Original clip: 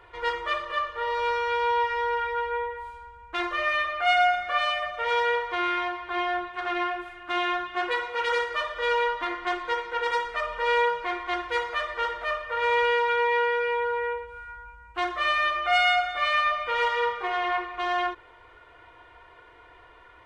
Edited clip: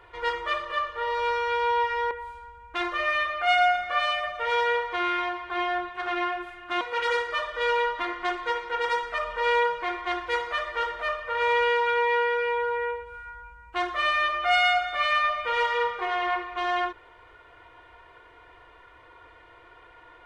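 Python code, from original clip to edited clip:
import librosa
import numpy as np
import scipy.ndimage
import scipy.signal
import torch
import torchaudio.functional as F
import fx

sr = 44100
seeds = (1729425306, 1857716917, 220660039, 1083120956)

y = fx.edit(x, sr, fx.cut(start_s=2.11, length_s=0.59),
    fx.cut(start_s=7.4, length_s=0.63), tone=tone)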